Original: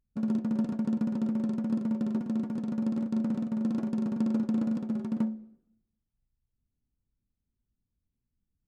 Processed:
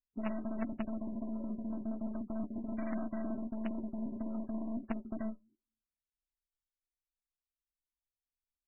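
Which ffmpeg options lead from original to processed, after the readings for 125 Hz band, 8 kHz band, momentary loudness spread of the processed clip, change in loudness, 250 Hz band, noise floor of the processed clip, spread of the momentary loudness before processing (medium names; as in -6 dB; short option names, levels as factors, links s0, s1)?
-11.0 dB, no reading, 2 LU, -9.0 dB, -9.5 dB, under -85 dBFS, 3 LU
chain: -filter_complex "[0:a]afwtdn=0.01,asuperstop=centerf=860:order=12:qfactor=1.8,lowshelf=f=130:g=4,agate=range=0.0282:threshold=0.0316:ratio=16:detection=peak,aemphasis=mode=reproduction:type=75fm,aphaser=in_gain=1:out_gain=1:delay=1.5:decay=0.63:speed=0.35:type=triangular,aeval=exprs='(tanh(31.6*val(0)+0.25)-tanh(0.25))/31.6':c=same,acompressor=threshold=0.00316:ratio=5,flanger=delay=3.4:depth=6.9:regen=73:speed=1.4:shape=sinusoidal,aecho=1:1:3.1:0.82,asplit=2[s0][s1];[s1]acrusher=bits=6:mix=0:aa=0.000001,volume=0.596[s2];[s0][s2]amix=inputs=2:normalize=0,volume=5.62" -ar 12000 -c:a libmp3lame -b:a 8k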